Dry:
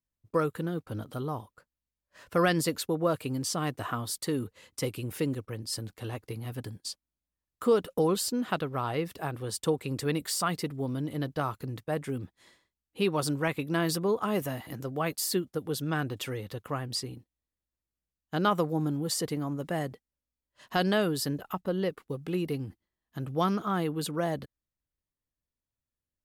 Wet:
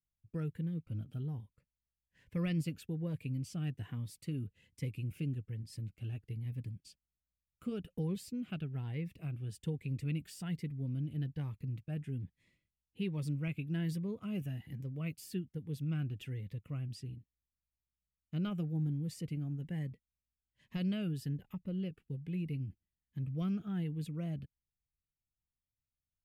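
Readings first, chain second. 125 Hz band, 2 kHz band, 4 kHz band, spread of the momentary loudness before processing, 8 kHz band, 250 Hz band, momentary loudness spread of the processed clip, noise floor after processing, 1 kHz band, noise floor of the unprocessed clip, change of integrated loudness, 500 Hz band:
−1.5 dB, −16.0 dB, −16.5 dB, 11 LU, −20.0 dB, −6.5 dB, 8 LU, below −85 dBFS, −24.5 dB, below −85 dBFS, −8.0 dB, −18.0 dB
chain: drawn EQ curve 160 Hz 0 dB, 320 Hz −12 dB, 1,100 Hz −23 dB, 2,500 Hz −5 dB, 4,000 Hz −19 dB
phaser whose notches keep moving one way rising 1.2 Hz
level −1 dB

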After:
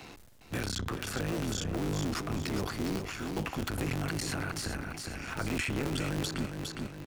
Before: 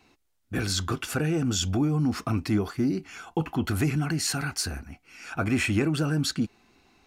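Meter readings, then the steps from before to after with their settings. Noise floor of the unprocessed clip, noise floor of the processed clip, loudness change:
−70 dBFS, −50 dBFS, −7.0 dB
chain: sub-harmonics by changed cycles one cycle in 3, muted
transient designer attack −3 dB, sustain +9 dB
on a send: repeating echo 409 ms, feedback 31%, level −8.5 dB
on the sum: multiband upward and downward compressor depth 70%
level −6.5 dB

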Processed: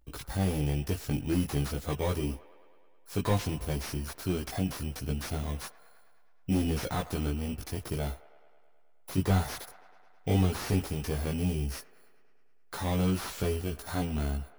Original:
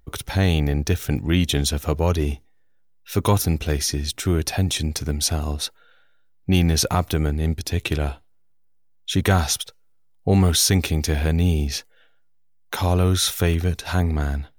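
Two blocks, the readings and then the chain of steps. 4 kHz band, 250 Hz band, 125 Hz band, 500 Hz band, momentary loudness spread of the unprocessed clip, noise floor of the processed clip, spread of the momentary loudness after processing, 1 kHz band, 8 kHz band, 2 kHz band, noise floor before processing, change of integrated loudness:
−16.0 dB, −8.0 dB, −10.0 dB, −9.0 dB, 9 LU, −56 dBFS, 9 LU, −9.0 dB, −16.5 dB, −11.5 dB, −55 dBFS, −10.0 dB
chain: samples in bit-reversed order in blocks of 16 samples
multi-voice chorus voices 6, 0.14 Hz, delay 18 ms, depth 3.9 ms
delay with a band-pass on its return 106 ms, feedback 72%, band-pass 1,100 Hz, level −16.5 dB
slew-rate limiting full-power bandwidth 130 Hz
level −5 dB

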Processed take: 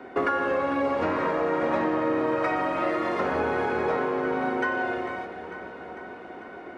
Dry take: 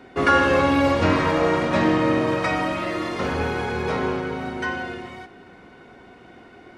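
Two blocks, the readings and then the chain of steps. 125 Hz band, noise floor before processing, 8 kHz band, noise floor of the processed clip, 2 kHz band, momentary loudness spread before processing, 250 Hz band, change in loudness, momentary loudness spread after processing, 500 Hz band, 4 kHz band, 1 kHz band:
−13.0 dB, −47 dBFS, below −10 dB, −42 dBFS, −4.5 dB, 11 LU, −6.0 dB, −4.5 dB, 14 LU, −2.5 dB, −12.0 dB, −3.0 dB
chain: three-way crossover with the lows and the highs turned down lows −13 dB, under 250 Hz, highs −13 dB, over 2,000 Hz
downward compressor 10 to 1, threshold −28 dBFS, peak gain reduction 14 dB
delay that swaps between a low-pass and a high-pass 224 ms, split 830 Hz, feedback 83%, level −11 dB
level +5.5 dB

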